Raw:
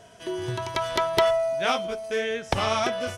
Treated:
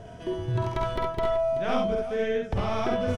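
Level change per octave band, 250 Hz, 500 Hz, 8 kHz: +3.0 dB, −1.0 dB, below −10 dB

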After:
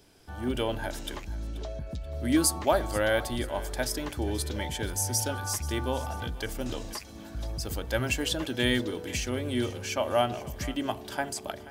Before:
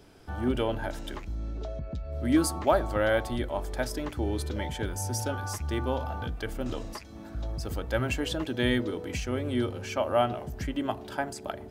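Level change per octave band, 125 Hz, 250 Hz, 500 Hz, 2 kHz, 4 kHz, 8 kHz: −1.0, −1.0, −1.0, +1.5, +4.5, +7.5 decibels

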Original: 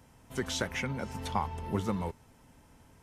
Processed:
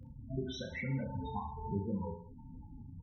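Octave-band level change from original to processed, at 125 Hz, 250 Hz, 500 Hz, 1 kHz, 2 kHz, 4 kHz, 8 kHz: −1.5 dB, −3.0 dB, −5.5 dB, −7.5 dB, −8.0 dB, −10.0 dB, below −15 dB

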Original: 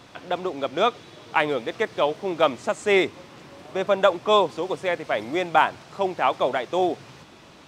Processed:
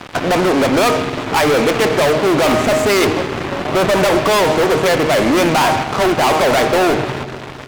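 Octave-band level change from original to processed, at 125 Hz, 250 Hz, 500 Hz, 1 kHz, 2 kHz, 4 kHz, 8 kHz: +18.0, +14.0, +9.5, +8.0, +10.0, +11.0, +20.0 decibels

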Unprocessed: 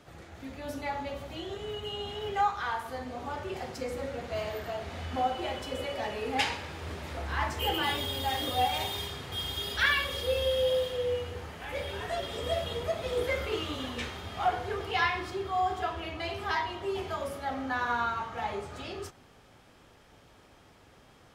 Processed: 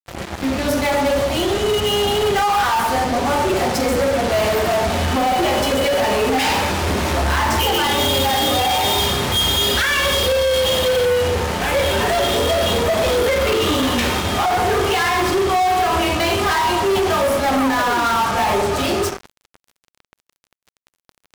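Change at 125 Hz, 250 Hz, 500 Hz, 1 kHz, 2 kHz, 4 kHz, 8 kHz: +15.0, +18.5, +15.5, +14.0, +12.5, +15.0, +21.5 decibels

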